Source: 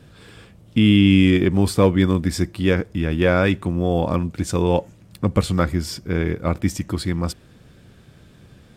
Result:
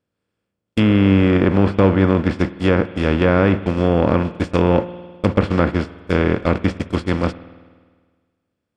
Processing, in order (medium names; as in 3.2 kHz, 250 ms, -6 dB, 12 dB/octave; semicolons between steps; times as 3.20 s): spectral levelling over time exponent 0.4; gate -14 dBFS, range -53 dB; spring tank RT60 1.6 s, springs 51 ms, chirp 75 ms, DRR 16 dB; low-pass that closes with the level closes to 2 kHz, closed at -8.5 dBFS; trim -2 dB